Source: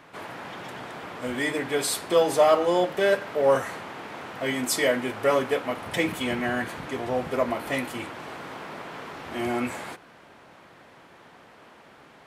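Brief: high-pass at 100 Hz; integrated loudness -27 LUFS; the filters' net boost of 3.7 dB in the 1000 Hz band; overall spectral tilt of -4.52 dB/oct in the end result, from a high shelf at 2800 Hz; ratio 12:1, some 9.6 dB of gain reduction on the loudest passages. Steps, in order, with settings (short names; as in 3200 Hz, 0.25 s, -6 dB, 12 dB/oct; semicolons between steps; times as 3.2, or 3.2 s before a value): HPF 100 Hz; bell 1000 Hz +6 dB; high shelf 2800 Hz -8.5 dB; compressor 12:1, threshold -22 dBFS; gain +3 dB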